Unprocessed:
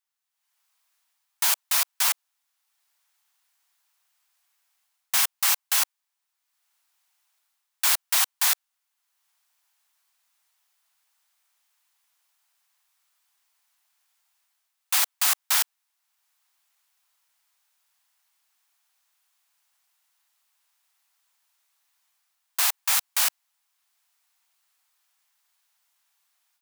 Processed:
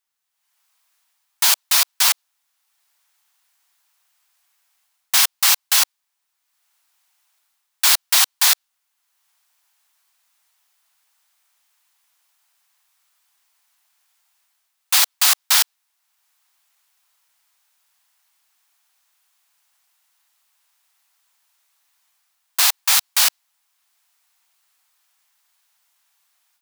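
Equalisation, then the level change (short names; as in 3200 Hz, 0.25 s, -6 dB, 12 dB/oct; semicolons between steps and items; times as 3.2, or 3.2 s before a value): dynamic EQ 4300 Hz, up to +5 dB, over -37 dBFS, Q 1.2; +5.5 dB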